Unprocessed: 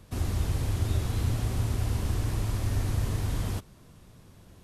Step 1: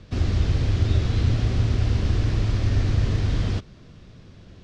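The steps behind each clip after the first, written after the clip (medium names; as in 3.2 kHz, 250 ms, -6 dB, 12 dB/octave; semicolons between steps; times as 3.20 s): low-pass 5.4 kHz 24 dB/octave; peaking EQ 920 Hz -7 dB 0.78 oct; trim +7 dB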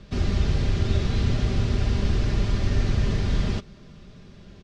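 comb 5 ms, depth 45%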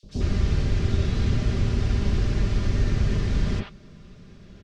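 three bands offset in time highs, lows, mids 30/90 ms, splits 760/3700 Hz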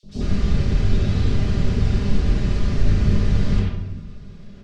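simulated room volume 350 m³, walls mixed, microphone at 1.4 m; trim -1.5 dB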